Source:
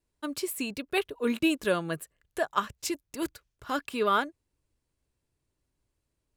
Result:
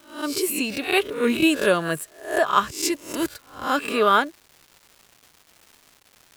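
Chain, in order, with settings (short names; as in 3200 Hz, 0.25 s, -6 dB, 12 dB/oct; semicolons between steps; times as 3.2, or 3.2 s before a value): spectral swells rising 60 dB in 0.44 s; low shelf 70 Hz -9.5 dB; crackle 540/s -46 dBFS; gain +6.5 dB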